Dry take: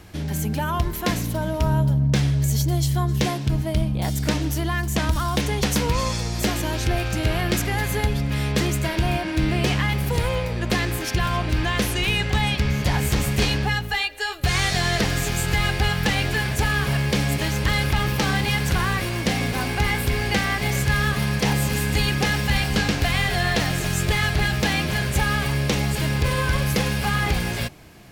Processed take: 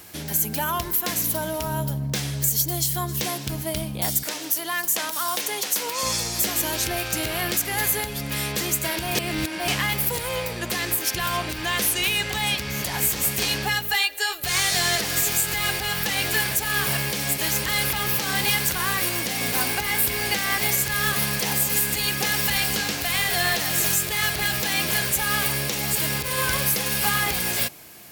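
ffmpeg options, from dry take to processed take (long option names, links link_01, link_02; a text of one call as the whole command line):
ffmpeg -i in.wav -filter_complex "[0:a]asettb=1/sr,asplit=3[link_01][link_02][link_03];[link_01]atrim=end=4.234[link_04];[link_02]atrim=start=4.23:end=6.03,asetpts=PTS-STARTPTS,afade=type=in:duration=0.004:curve=qsin,afade=type=out:start_time=1.796:duration=0.004:curve=qsin,highpass=370[link_05];[link_03]atrim=start=6.026[link_06];[link_04][link_05]acrossfade=duration=0.004:curve1=hsin:curve2=qsin[link_07];[link_07][link_06]acrossfade=duration=0.004:curve1=qsin:curve2=hsin,asplit=3[link_08][link_09][link_10];[link_08]atrim=end=9.152[link_11];[link_09]atrim=start=9.148:end=9.682,asetpts=PTS-STARTPTS,areverse[link_12];[link_10]atrim=start=9.678[link_13];[link_11][link_12]acrossfade=duration=0.004:curve1=hsin:curve2=hsin[link_14];[link_14][link_13]acrossfade=duration=0.004:curve1=hsin:curve2=hsin,aemphasis=mode=production:type=bsi,alimiter=limit=-10dB:level=0:latency=1:release=211" out.wav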